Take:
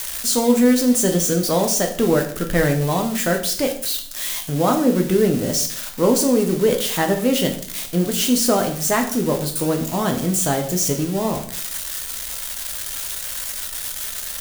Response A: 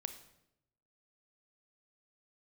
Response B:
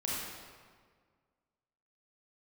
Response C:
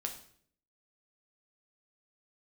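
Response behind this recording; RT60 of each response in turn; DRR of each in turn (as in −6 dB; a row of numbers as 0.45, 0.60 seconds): C; 0.80, 1.7, 0.60 seconds; 9.0, −6.0, 3.0 decibels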